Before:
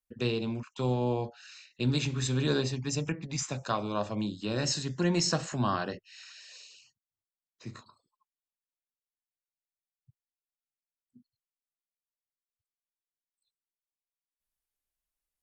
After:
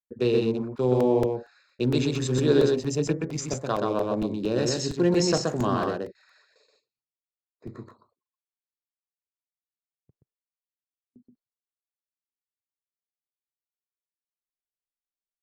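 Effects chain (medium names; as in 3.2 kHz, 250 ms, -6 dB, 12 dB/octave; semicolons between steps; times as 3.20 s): local Wiener filter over 15 samples; gate with hold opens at -53 dBFS; peaking EQ 420 Hz +10.5 dB 1.1 oct; delay 126 ms -3 dB; crackling interface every 0.23 s, samples 128, repeat, from 0.77 s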